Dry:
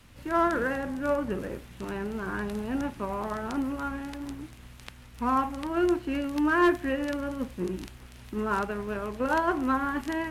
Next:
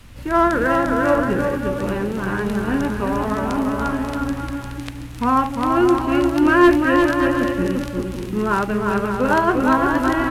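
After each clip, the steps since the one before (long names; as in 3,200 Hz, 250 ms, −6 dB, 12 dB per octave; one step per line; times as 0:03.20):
low-shelf EQ 93 Hz +7.5 dB
on a send: bouncing-ball delay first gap 350 ms, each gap 0.65×, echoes 5
on the sum: level +8 dB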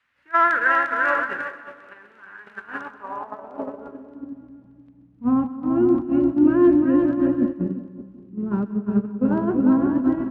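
noise gate −18 dBFS, range −19 dB
band-pass filter sweep 1,700 Hz → 210 Hz, 0:02.56–0:04.59
echo with a time of its own for lows and highs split 1,200 Hz, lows 190 ms, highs 129 ms, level −15.5 dB
level +6.5 dB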